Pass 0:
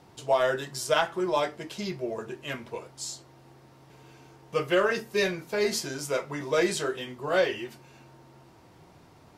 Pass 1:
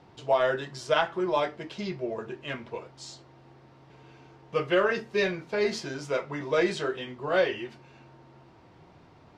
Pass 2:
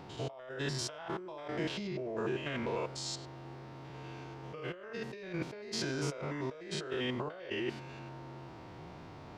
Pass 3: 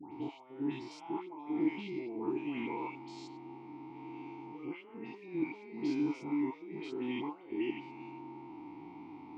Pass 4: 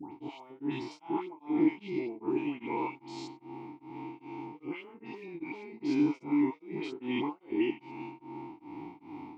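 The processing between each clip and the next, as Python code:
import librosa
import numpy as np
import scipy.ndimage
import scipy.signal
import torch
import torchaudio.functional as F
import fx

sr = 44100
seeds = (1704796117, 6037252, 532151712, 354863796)

y1 = scipy.signal.sosfilt(scipy.signal.butter(2, 4100.0, 'lowpass', fs=sr, output='sos'), x)
y2 = fx.spec_steps(y1, sr, hold_ms=100)
y2 = fx.over_compress(y2, sr, threshold_db=-40.0, ratio=-1.0)
y3 = fx.vowel_filter(y2, sr, vowel='u')
y3 = fx.dispersion(y3, sr, late='highs', ms=130.0, hz=1500.0)
y3 = y3 * 10.0 ** (11.0 / 20.0)
y4 = y3 * np.abs(np.cos(np.pi * 2.5 * np.arange(len(y3)) / sr))
y4 = y4 * 10.0 ** (6.5 / 20.0)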